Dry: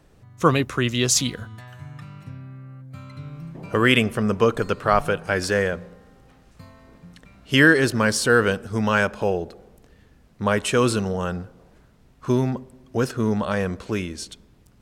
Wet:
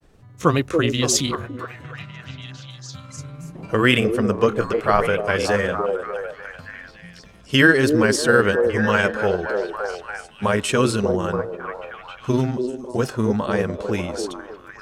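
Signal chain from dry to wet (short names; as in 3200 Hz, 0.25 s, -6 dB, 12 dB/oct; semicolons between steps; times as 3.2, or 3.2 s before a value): delay with a stepping band-pass 0.289 s, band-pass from 400 Hz, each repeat 0.7 oct, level -2 dB; grains 0.1 s, grains 20/s, spray 14 ms, pitch spread up and down by 0 st; gain +2 dB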